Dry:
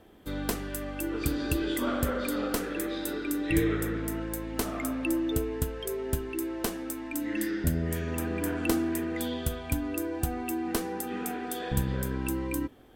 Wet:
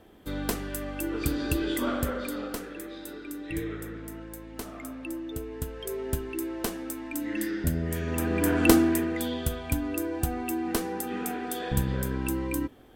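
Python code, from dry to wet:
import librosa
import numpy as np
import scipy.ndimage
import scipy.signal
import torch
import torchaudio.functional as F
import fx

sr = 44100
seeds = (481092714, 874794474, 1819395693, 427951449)

y = fx.gain(x, sr, db=fx.line((1.86, 1.0), (2.82, -7.5), (5.32, -7.5), (5.97, 0.0), (7.9, 0.0), (8.7, 8.5), (9.2, 1.5)))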